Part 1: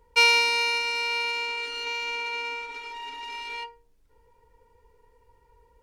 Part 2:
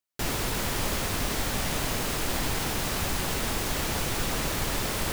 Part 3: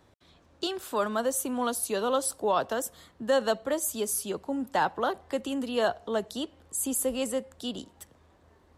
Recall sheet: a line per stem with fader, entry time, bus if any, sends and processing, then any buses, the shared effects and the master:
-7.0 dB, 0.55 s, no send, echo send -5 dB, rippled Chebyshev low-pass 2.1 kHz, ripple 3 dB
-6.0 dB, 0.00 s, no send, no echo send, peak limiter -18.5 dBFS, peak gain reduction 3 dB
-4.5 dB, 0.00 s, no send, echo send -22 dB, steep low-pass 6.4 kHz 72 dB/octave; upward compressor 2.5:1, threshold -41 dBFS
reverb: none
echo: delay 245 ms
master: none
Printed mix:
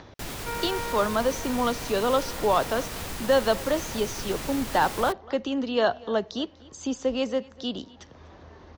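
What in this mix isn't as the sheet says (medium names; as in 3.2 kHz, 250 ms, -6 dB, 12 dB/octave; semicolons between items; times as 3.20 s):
stem 1: entry 0.55 s -> 0.30 s; stem 3 -4.5 dB -> +3.5 dB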